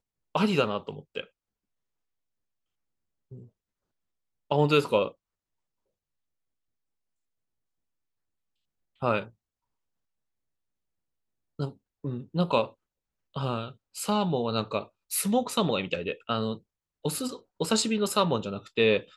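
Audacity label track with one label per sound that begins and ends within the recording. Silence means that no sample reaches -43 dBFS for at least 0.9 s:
3.310000	3.440000	sound
4.510000	5.110000	sound
9.020000	9.280000	sound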